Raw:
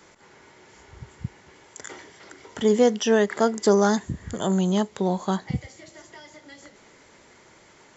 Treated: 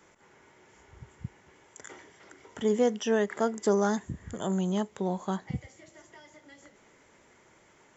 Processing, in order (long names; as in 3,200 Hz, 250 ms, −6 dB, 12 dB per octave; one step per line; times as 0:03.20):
parametric band 4,400 Hz −7.5 dB 0.54 octaves
level −6.5 dB